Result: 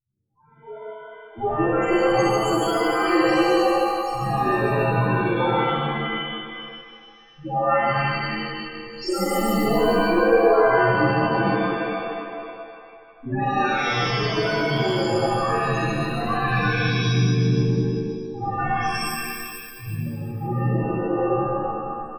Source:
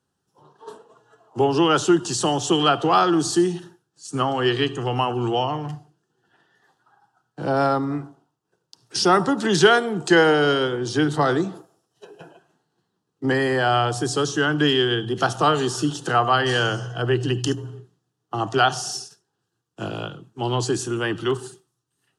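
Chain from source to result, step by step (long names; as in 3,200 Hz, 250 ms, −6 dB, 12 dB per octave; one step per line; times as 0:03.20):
lower of the sound and its delayed copy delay 8.8 ms
downward compressor 2 to 1, threshold −28 dBFS, peak gain reduction 9.5 dB
spectral peaks only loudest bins 1
on a send: single-tap delay 145 ms −6 dB
on the sum: reverb with rising layers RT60 1.8 s, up +7 semitones, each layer −2 dB, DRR −8 dB
level +5 dB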